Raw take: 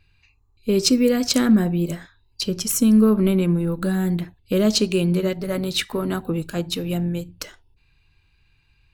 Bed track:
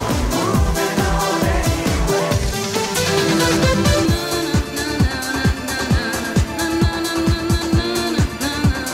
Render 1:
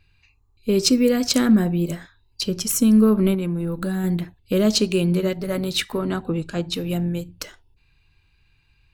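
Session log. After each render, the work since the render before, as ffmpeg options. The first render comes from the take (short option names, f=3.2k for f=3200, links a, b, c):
-filter_complex "[0:a]asettb=1/sr,asplit=3[a][b][c];[a]atrim=end=3.344[d];[b]atrim=start=3.34:end=4.04,asetpts=PTS-STARTPTS,afade=t=in:d=0.004:c=qsin,afade=t=out:st=0.696:d=0.004:c=qsin,acompressor=threshold=-21dB:ratio=6:attack=3.2:release=140:knee=1:detection=peak[e];[c]atrim=start=4.036[f];[d][e]acrossfade=d=0.004:c1=hsin:c2=qsin[g];[g][f]acrossfade=d=0.004:c1=qsin:c2=hsin,asettb=1/sr,asplit=3[h][i][j];[h]atrim=end=5.984[k];[i]atrim=start=5.98:end=6.74,asetpts=PTS-STARTPTS,afade=t=in:d=0.004:c=qsin,afade=t=out:st=0.756:d=0.004:c=qsin,lowpass=7k[l];[j]atrim=start=6.736[m];[k][l]acrossfade=d=0.004:c1=hsin:c2=qsin[n];[n][m]acrossfade=d=0.004:c1=qsin:c2=hsin"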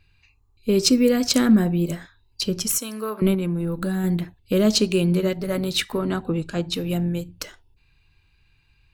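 -filter_complex "[0:a]asettb=1/sr,asplit=3[a][b][c];[a]atrim=end=2.784[d];[b]atrim=start=2.78:end=3.22,asetpts=PTS-STARTPTS,afade=t=in:d=0.004:c=qsin,afade=t=out:st=0.436:d=0.004:c=qsin,highpass=700[e];[c]atrim=start=3.216[f];[d][e]acrossfade=d=0.004:c1=hsin:c2=qsin[g];[g][f]acrossfade=d=0.004:c1=qsin:c2=hsin"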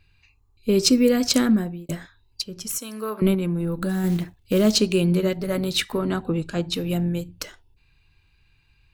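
-filter_complex "[0:a]asettb=1/sr,asplit=3[a][b][c];[a]atrim=end=3.894[d];[b]atrim=start=3.89:end=4.8,asetpts=PTS-STARTPTS,afade=t=in:d=0.004:c=qsin,afade=t=out:st=0.906:d=0.004:c=qsin,acrusher=bits=6:mode=log:mix=0:aa=0.000001[e];[c]atrim=start=4.796[f];[d][e]acrossfade=d=0.004:c1=hsin:c2=qsin[g];[g][f]acrossfade=d=0.004:c1=qsin:c2=hsin,asplit=3[h][i][j];[h]atrim=end=1.89,asetpts=PTS-STARTPTS,afade=t=out:st=1.36:d=0.53[k];[i]atrim=start=1.89:end=2.42,asetpts=PTS-STARTPTS,afade=t=in:d=0.004:c=hsin,afade=t=out:st=0.526:d=0.004:c=hsin:silence=0.141254[l];[j]atrim=start=2.42,asetpts=PTS-STARTPTS,afade=t=in:d=0.71:silence=0.141254[m];[k][l][m]concat=n=3:v=0:a=1"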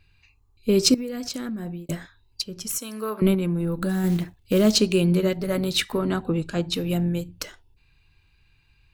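-filter_complex "[0:a]asettb=1/sr,asplit=3[a][b][c];[a]atrim=end=0.944[d];[b]atrim=start=0.94:end=1.74,asetpts=PTS-STARTPTS,afade=t=in:d=0.004:c=qsin,afade=t=out:st=0.796:d=0.004:c=qsin,acompressor=threshold=-27dB:ratio=16:attack=3.2:release=140:knee=1:detection=peak[e];[c]atrim=start=1.736[f];[d][e]acrossfade=d=0.004:c1=hsin:c2=qsin[g];[g][f]acrossfade=d=0.004:c1=qsin:c2=hsin"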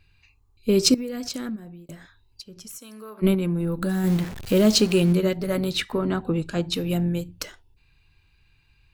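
-filter_complex "[0:a]asplit=3[a][b][c];[a]afade=t=out:st=1.55:d=0.02[d];[b]acompressor=threshold=-46dB:ratio=2:attack=3.2:release=140:knee=1:detection=peak,afade=t=in:st=1.55:d=0.02,afade=t=out:st=3.22:d=0.02[e];[c]afade=t=in:st=3.22:d=0.02[f];[d][e][f]amix=inputs=3:normalize=0,asettb=1/sr,asplit=3[g][h][i];[g]atrim=end=4.074[j];[h]atrim=start=4.07:end=5.13,asetpts=PTS-STARTPTS,afade=t=in:d=0.004:c=qsin,afade=t=out:st=1.056:d=0.004:c=qsin,aeval=exprs='val(0)+0.5*0.0299*sgn(val(0))':c=same[k];[i]atrim=start=5.126[l];[j][k]acrossfade=d=0.004:c1=hsin:c2=qsin[m];[m][l]acrossfade=d=0.004:c1=qsin:c2=hsin,asettb=1/sr,asplit=3[n][o][p];[n]atrim=end=5.714[q];[o]atrim=start=5.71:end=6.25,asetpts=PTS-STARTPTS,afade=t=in:d=0.004:c=qsin,afade=t=out:st=0.536:d=0.004:c=qsin,highshelf=f=4.6k:g=-8.5[r];[p]atrim=start=6.246[s];[q][r]acrossfade=d=0.004:c1=hsin:c2=qsin[t];[t][s]acrossfade=d=0.004:c1=qsin:c2=hsin"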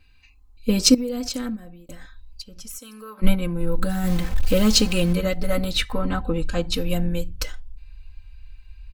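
-af "aecho=1:1:3.9:0.92,asubboost=boost=10:cutoff=69"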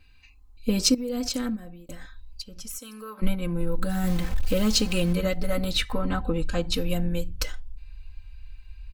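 -af "acompressor=threshold=-22dB:ratio=2"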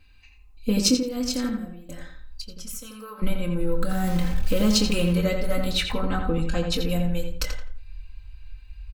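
-filter_complex "[0:a]asplit=2[a][b];[b]adelay=24,volume=-9.5dB[c];[a][c]amix=inputs=2:normalize=0,asplit=2[d][e];[e]adelay=85,lowpass=f=3.3k:p=1,volume=-5dB,asplit=2[f][g];[g]adelay=85,lowpass=f=3.3k:p=1,volume=0.32,asplit=2[h][i];[i]adelay=85,lowpass=f=3.3k:p=1,volume=0.32,asplit=2[j][k];[k]adelay=85,lowpass=f=3.3k:p=1,volume=0.32[l];[d][f][h][j][l]amix=inputs=5:normalize=0"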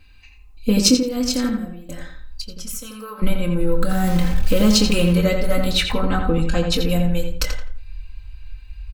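-af "volume=5.5dB,alimiter=limit=-1dB:level=0:latency=1"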